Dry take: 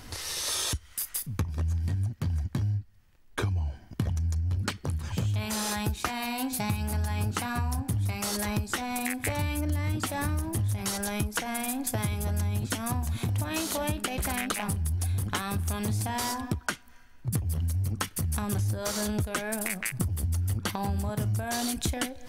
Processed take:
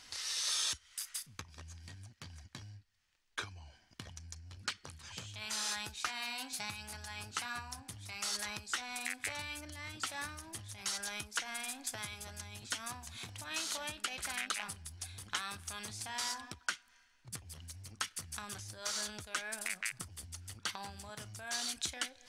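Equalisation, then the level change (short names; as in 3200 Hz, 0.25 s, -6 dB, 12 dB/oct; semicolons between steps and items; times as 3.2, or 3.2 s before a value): pre-emphasis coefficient 0.97; dynamic EQ 1400 Hz, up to +4 dB, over -60 dBFS, Q 2.5; air absorption 110 m; +6.0 dB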